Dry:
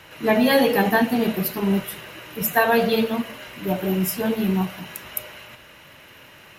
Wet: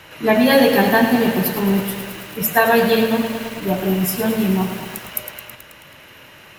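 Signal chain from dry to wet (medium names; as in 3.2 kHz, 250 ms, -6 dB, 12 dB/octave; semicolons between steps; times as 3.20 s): bit-crushed delay 108 ms, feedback 80%, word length 6-bit, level -9 dB; trim +3.5 dB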